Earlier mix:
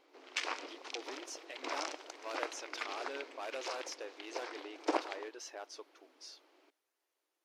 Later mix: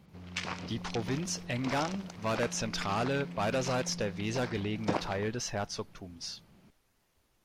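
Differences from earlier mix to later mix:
speech +11.0 dB; master: remove brick-wall FIR high-pass 280 Hz

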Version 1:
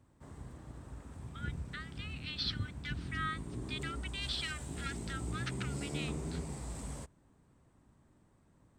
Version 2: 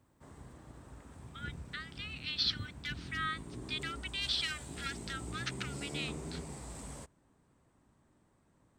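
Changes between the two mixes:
speech: add tilt EQ +2.5 dB/octave; master: add bass shelf 210 Hz -6 dB

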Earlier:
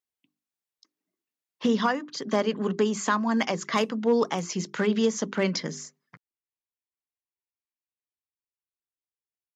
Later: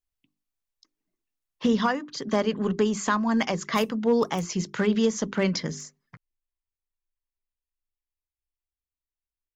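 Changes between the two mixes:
background: remove distance through air 62 m; master: remove high-pass 180 Hz 12 dB/octave

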